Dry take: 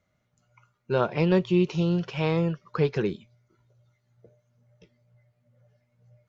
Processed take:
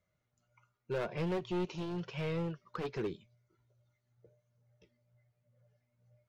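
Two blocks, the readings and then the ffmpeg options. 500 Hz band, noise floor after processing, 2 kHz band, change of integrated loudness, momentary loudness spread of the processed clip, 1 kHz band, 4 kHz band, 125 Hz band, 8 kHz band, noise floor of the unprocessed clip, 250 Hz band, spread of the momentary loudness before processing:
-11.5 dB, -82 dBFS, -10.5 dB, -12.0 dB, 5 LU, -10.5 dB, -10.0 dB, -13.0 dB, no reading, -74 dBFS, -13.0 dB, 7 LU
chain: -af "asoftclip=type=hard:threshold=0.0794,flanger=delay=1.8:depth=1.6:regen=-56:speed=0.9:shape=sinusoidal,volume=0.596"

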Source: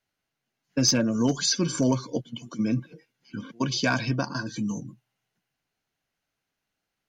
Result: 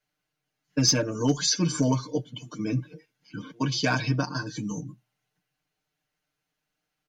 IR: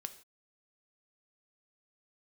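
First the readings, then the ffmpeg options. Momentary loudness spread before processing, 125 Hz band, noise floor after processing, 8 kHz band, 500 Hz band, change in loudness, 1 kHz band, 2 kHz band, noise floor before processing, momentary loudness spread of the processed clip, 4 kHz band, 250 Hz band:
15 LU, +2.0 dB, -83 dBFS, +0.5 dB, -0.5 dB, -0.5 dB, +0.5 dB, -1.0 dB, -84 dBFS, 17 LU, 0.0 dB, -2.0 dB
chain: -filter_complex "[0:a]aecho=1:1:6.6:0.96,asplit=2[s0][s1];[1:a]atrim=start_sample=2205,atrim=end_sample=4410[s2];[s1][s2]afir=irnorm=-1:irlink=0,volume=0.335[s3];[s0][s3]amix=inputs=2:normalize=0,volume=0.596"

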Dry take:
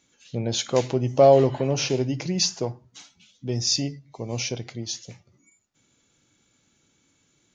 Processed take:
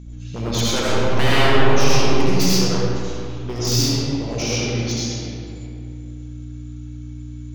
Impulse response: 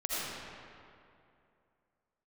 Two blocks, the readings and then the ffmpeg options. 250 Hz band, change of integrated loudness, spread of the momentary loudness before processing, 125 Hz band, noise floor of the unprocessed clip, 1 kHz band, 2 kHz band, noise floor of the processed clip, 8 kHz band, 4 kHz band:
+7.0 dB, +3.5 dB, 17 LU, +7.0 dB, -67 dBFS, +4.5 dB, +14.0 dB, -33 dBFS, no reading, +6.0 dB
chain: -filter_complex "[0:a]aeval=exprs='val(0)+0.0141*(sin(2*PI*60*n/s)+sin(2*PI*2*60*n/s)/2+sin(2*PI*3*60*n/s)/3+sin(2*PI*4*60*n/s)/4+sin(2*PI*5*60*n/s)/5)':c=same,aeval=exprs='0.106*(abs(mod(val(0)/0.106+3,4)-2)-1)':c=same[s0];[1:a]atrim=start_sample=2205[s1];[s0][s1]afir=irnorm=-1:irlink=0,volume=1.26"

